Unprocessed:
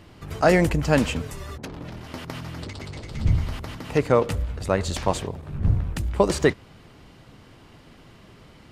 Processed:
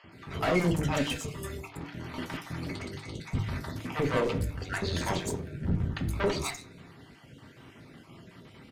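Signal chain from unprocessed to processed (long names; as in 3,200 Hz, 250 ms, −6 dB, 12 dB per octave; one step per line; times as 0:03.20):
time-frequency cells dropped at random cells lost 32%
high-pass filter 85 Hz
tube saturation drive 23 dB, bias 0.6
in parallel at −11 dB: hard clipping −31 dBFS, distortion −7 dB
on the sum: three-band delay without the direct sound mids, lows, highs 40/120 ms, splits 680/5,200 Hz
on a send at −3.5 dB: convolution reverb RT60 0.40 s, pre-delay 3 ms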